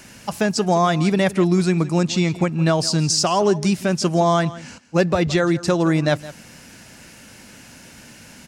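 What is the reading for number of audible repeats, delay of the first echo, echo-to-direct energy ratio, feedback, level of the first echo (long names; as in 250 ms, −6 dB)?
1, 166 ms, −17.0 dB, repeats not evenly spaced, −17.0 dB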